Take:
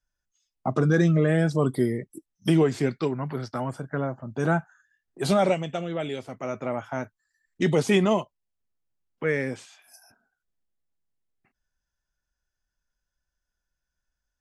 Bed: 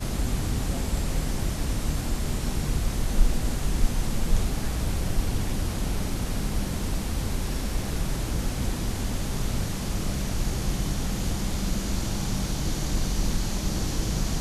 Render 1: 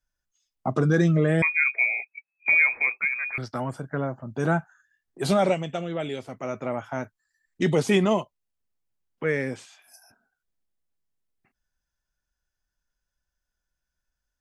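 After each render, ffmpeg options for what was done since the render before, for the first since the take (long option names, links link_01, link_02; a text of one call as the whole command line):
ffmpeg -i in.wav -filter_complex "[0:a]asettb=1/sr,asplit=3[link_01][link_02][link_03];[link_01]atrim=end=1.424[link_04];[link_02]atrim=start=1.42:end=3.38,asetpts=PTS-STARTPTS,afade=type=in:duration=0.004:curve=qsin,afade=type=out:start_time=1.956:duration=0.004:curve=qsin,lowpass=frequency=2200:width_type=q:width=0.5098,lowpass=frequency=2200:width_type=q:width=0.6013,lowpass=frequency=2200:width_type=q:width=0.9,lowpass=frequency=2200:width_type=q:width=2.563,afreqshift=-2600[link_05];[link_03]atrim=start=3.376[link_06];[link_04][link_05]acrossfade=duration=0.004:curve1=hsin:curve2=qsin[link_07];[link_07][link_06]acrossfade=duration=0.004:curve1=qsin:curve2=hsin" out.wav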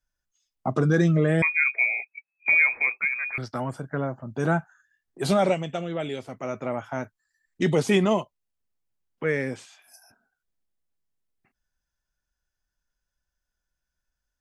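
ffmpeg -i in.wav -af anull out.wav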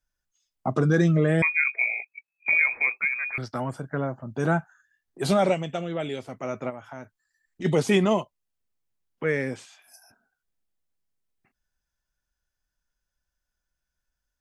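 ffmpeg -i in.wav -filter_complex "[0:a]asplit=3[link_01][link_02][link_03];[link_01]afade=type=out:start_time=1.6:duration=0.02[link_04];[link_02]tremolo=f=49:d=0.462,afade=type=in:start_time=1.6:duration=0.02,afade=type=out:start_time=2.7:duration=0.02[link_05];[link_03]afade=type=in:start_time=2.7:duration=0.02[link_06];[link_04][link_05][link_06]amix=inputs=3:normalize=0,asplit=3[link_07][link_08][link_09];[link_07]afade=type=out:start_time=6.69:duration=0.02[link_10];[link_08]acompressor=threshold=-42dB:ratio=2:attack=3.2:release=140:knee=1:detection=peak,afade=type=in:start_time=6.69:duration=0.02,afade=type=out:start_time=7.64:duration=0.02[link_11];[link_09]afade=type=in:start_time=7.64:duration=0.02[link_12];[link_10][link_11][link_12]amix=inputs=3:normalize=0" out.wav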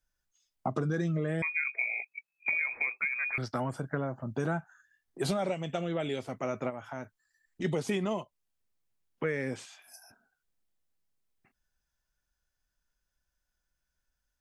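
ffmpeg -i in.wav -af "acompressor=threshold=-28dB:ratio=6" out.wav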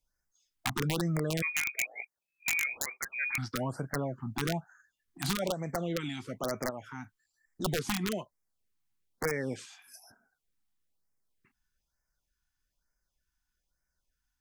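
ffmpeg -i in.wav -af "aeval=exprs='(mod(12.6*val(0)+1,2)-1)/12.6':channel_layout=same,afftfilt=real='re*(1-between(b*sr/1024,460*pow(3500/460,0.5+0.5*sin(2*PI*1.1*pts/sr))/1.41,460*pow(3500/460,0.5+0.5*sin(2*PI*1.1*pts/sr))*1.41))':imag='im*(1-between(b*sr/1024,460*pow(3500/460,0.5+0.5*sin(2*PI*1.1*pts/sr))/1.41,460*pow(3500/460,0.5+0.5*sin(2*PI*1.1*pts/sr))*1.41))':win_size=1024:overlap=0.75" out.wav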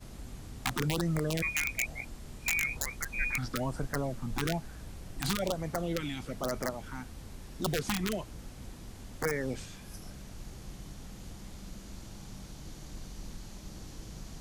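ffmpeg -i in.wav -i bed.wav -filter_complex "[1:a]volume=-18dB[link_01];[0:a][link_01]amix=inputs=2:normalize=0" out.wav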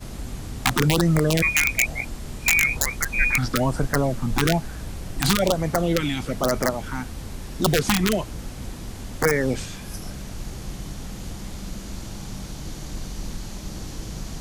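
ffmpeg -i in.wav -af "volume=11.5dB" out.wav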